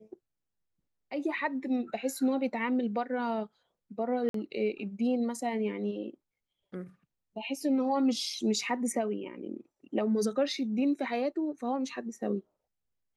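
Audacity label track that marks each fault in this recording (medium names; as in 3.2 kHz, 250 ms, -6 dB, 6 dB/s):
4.290000	4.340000	dropout 53 ms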